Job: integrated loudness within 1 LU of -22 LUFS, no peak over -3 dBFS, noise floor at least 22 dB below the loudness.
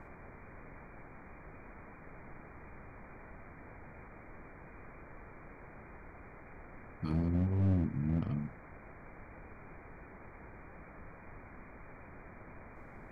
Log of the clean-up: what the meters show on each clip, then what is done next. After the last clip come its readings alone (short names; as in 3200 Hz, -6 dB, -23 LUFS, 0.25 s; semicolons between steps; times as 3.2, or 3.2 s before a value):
clipped 0.5%; flat tops at -25.0 dBFS; noise floor -53 dBFS; noise floor target -56 dBFS; loudness -34.0 LUFS; peak -25.0 dBFS; loudness target -22.0 LUFS
-> clip repair -25 dBFS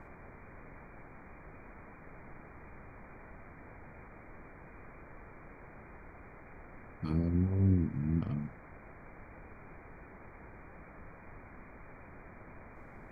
clipped 0.0%; noise floor -53 dBFS; noise floor target -55 dBFS
-> noise print and reduce 6 dB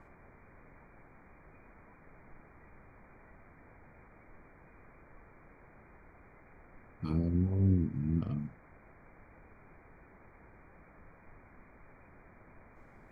noise floor -59 dBFS; loudness -32.5 LUFS; peak -17.0 dBFS; loudness target -22.0 LUFS
-> gain +10.5 dB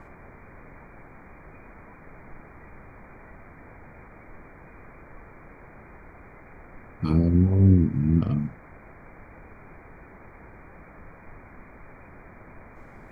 loudness -22.0 LUFS; peak -6.5 dBFS; noise floor -49 dBFS